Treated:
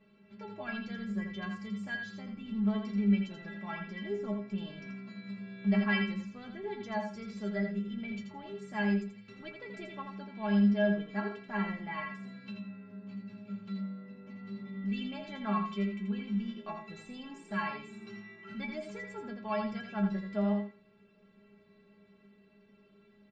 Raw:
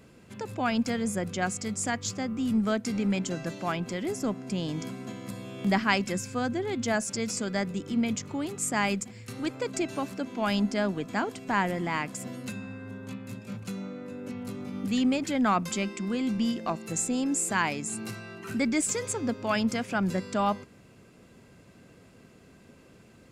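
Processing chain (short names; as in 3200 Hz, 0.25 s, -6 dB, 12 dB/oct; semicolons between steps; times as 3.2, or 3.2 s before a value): LPF 3800 Hz 24 dB/oct; metallic resonator 200 Hz, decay 0.32 s, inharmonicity 0.008; feedback echo 83 ms, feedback 17%, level -6 dB; gain +4 dB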